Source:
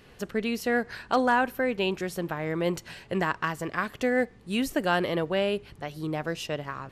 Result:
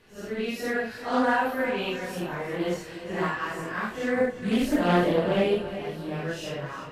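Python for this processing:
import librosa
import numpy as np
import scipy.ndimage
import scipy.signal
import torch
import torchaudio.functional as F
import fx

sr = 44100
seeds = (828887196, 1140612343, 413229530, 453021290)

p1 = fx.phase_scramble(x, sr, seeds[0], window_ms=200)
p2 = fx.low_shelf(p1, sr, hz=470.0, db=7.5, at=(4.16, 5.71))
p3 = np.sign(p2) * np.maximum(np.abs(p2) - 10.0 ** (-38.5 / 20.0), 0.0)
p4 = p2 + F.gain(torch.from_numpy(p3), -10.0).numpy()
p5 = fx.chorus_voices(p4, sr, voices=4, hz=0.54, base_ms=25, depth_ms=2.4, mix_pct=35)
p6 = p5 + fx.echo_feedback(p5, sr, ms=355, feedback_pct=46, wet_db=-12.0, dry=0)
y = fx.doppler_dist(p6, sr, depth_ms=0.23)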